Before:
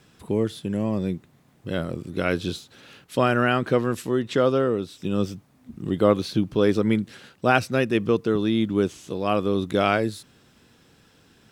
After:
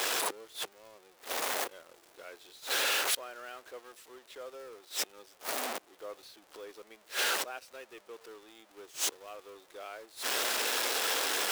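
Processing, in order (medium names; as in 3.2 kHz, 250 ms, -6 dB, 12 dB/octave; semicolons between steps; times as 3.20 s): jump at every zero crossing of -24 dBFS; inverted gate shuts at -23 dBFS, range -25 dB; high-pass 440 Hz 24 dB/octave; in parallel at -9 dB: bit crusher 8-bit; on the sum: crackle 67 per s -43 dBFS; trim -2 dB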